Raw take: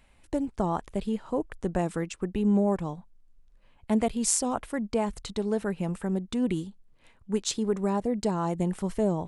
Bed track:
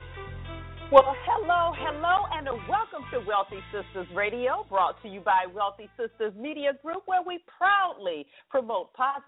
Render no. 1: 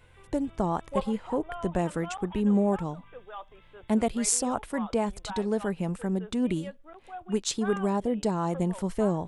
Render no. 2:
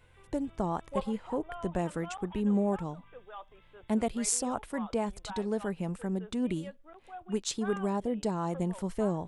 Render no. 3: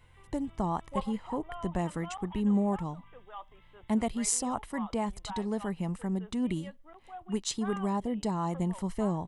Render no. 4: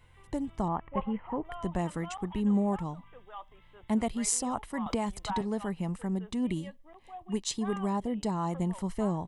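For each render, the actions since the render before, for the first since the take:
add bed track -16 dB
gain -4 dB
comb 1 ms, depth 37%
0.68–1.45 steep low-pass 2800 Hz 48 dB/oct; 4.86–5.41 three-band squash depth 100%; 6.28–7.83 Butterworth band-stop 1400 Hz, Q 4.9

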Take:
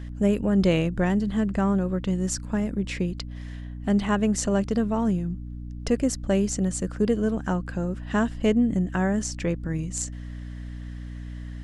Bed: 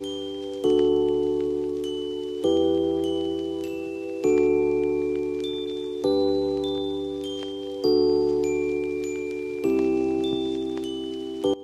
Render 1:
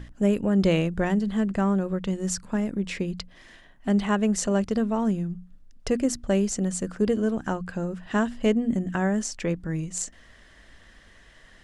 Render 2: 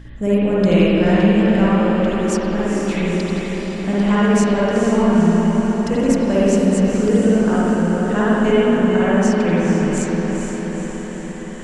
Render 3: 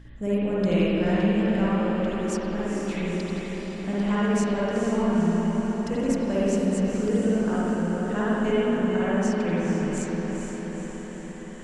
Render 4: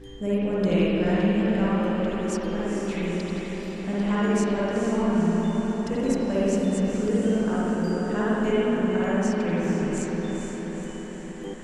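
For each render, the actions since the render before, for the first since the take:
notches 60/120/180/240/300 Hz
diffused feedback echo 0.472 s, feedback 65%, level -5 dB; spring tank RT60 2.1 s, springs 52/59 ms, chirp 35 ms, DRR -8 dB
gain -8.5 dB
add bed -14 dB

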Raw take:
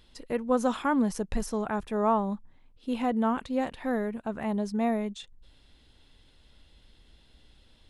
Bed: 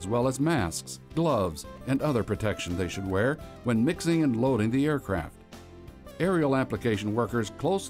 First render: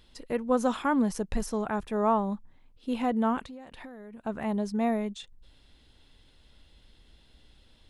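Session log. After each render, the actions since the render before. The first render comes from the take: 3.45–4.24 compressor 16:1, threshold -40 dBFS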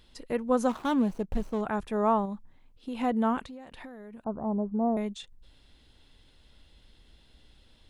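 0.69–1.61 median filter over 25 samples; 2.25–3.01 compressor, threshold -31 dBFS; 4.24–4.97 steep low-pass 1200 Hz 48 dB/oct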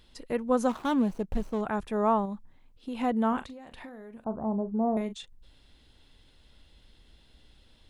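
3.28–5.13 doubler 41 ms -12 dB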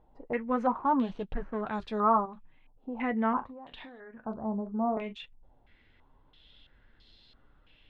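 flange 0.78 Hz, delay 6.3 ms, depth 3 ms, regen -48%; stepped low-pass 3 Hz 800–4300 Hz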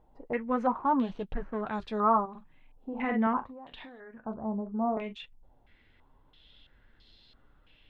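2.3–3.27 doubler 50 ms -4.5 dB; 4.19–4.82 air absorption 210 m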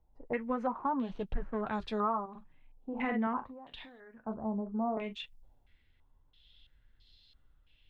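compressor 10:1, threshold -29 dBFS, peak gain reduction 10.5 dB; three-band expander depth 40%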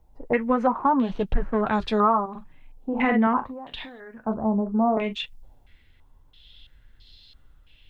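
gain +11.5 dB

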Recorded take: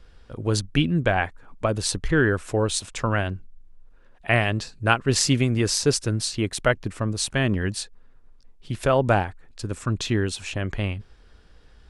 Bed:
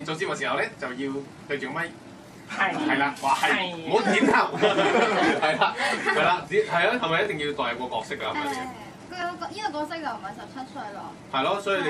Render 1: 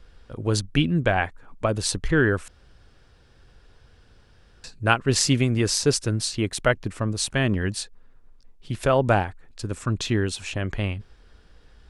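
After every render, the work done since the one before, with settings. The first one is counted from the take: 2.48–4.64 room tone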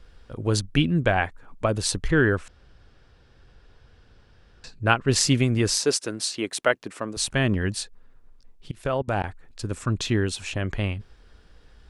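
2.35–5.08 air absorption 59 m; 5.78–7.17 HPF 300 Hz; 8.71–9.24 level quantiser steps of 24 dB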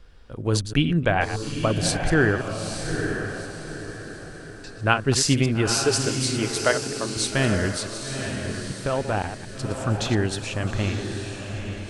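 reverse delay 0.105 s, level -10 dB; diffused feedback echo 0.89 s, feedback 41%, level -6 dB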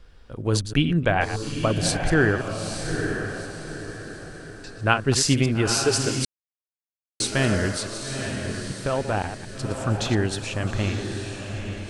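6.25–7.2 mute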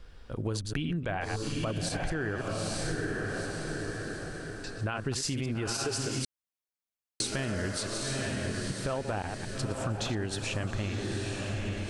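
limiter -14.5 dBFS, peak gain reduction 11 dB; compressor, threshold -29 dBFS, peak gain reduction 10.5 dB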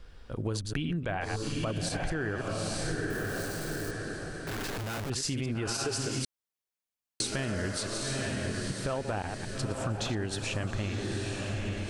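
3.1–3.91 switching spikes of -35.5 dBFS; 4.47–5.1 Schmitt trigger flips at -50.5 dBFS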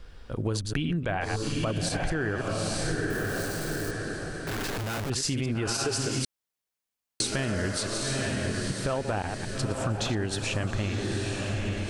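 gain +3.5 dB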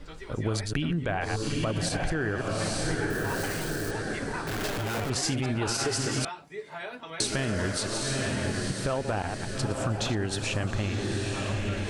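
add bed -16.5 dB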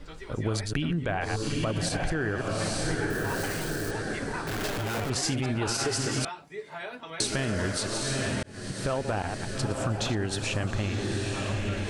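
8.43–8.88 fade in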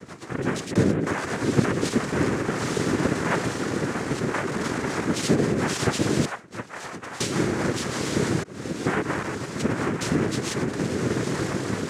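small resonant body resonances 280/950 Hz, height 14 dB; noise vocoder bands 3

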